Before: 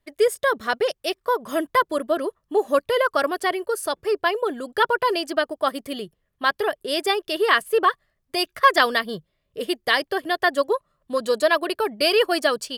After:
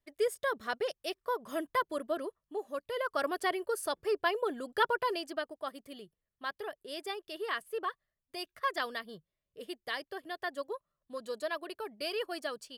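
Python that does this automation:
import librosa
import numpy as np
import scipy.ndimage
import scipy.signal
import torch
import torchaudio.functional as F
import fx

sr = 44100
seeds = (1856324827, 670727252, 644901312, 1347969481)

y = fx.gain(x, sr, db=fx.line((2.2, -11.5), (2.72, -19.0), (3.33, -8.5), (4.83, -8.5), (5.71, -17.0)))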